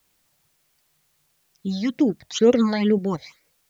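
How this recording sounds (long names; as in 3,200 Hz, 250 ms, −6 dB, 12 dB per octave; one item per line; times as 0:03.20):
phaser sweep stages 8, 2.1 Hz, lowest notch 350–1,300 Hz
a quantiser's noise floor 12 bits, dither triangular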